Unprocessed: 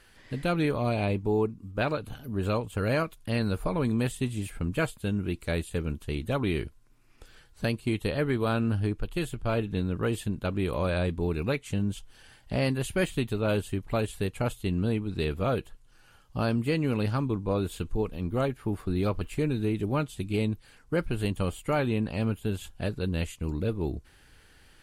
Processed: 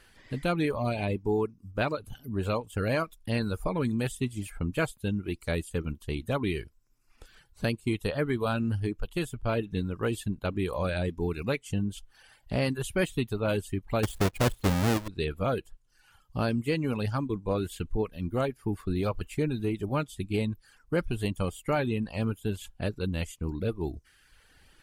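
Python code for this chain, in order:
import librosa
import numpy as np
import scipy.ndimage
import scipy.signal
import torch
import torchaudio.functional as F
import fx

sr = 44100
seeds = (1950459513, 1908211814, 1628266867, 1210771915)

y = fx.halfwave_hold(x, sr, at=(14.03, 15.08))
y = fx.dereverb_blind(y, sr, rt60_s=0.88)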